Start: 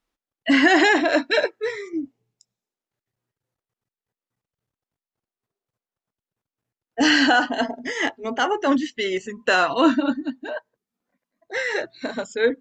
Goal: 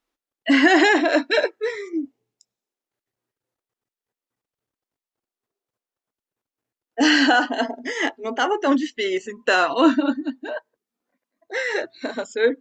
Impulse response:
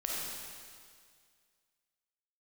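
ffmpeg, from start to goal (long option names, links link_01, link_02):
-af "lowshelf=frequency=220:width_type=q:width=1.5:gain=-6.5"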